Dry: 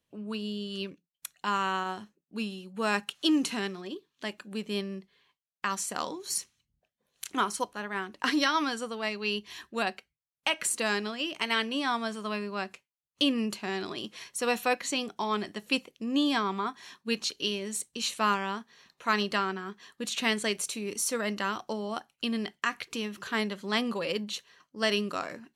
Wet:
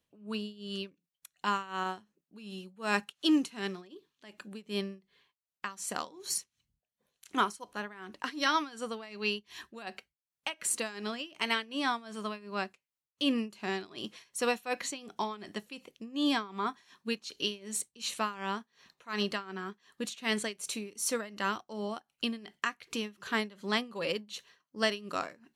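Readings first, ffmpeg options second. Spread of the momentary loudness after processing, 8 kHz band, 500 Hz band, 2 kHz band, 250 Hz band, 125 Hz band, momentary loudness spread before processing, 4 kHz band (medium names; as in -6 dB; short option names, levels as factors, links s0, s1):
14 LU, -3.0 dB, -3.5 dB, -4.0 dB, -3.5 dB, -4.0 dB, 11 LU, -4.0 dB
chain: -af "tremolo=f=2.7:d=0.88"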